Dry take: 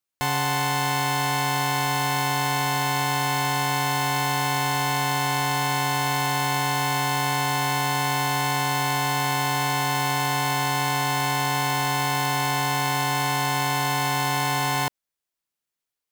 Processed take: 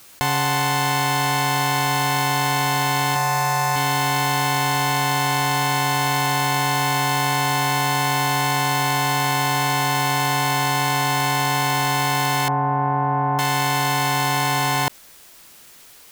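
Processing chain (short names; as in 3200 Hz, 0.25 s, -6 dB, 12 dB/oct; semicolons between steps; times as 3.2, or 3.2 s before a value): 3.15–3.76 comb 5.6 ms, depth 82%; 12.48–13.39 LPF 1200 Hz 24 dB/oct; fast leveller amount 100%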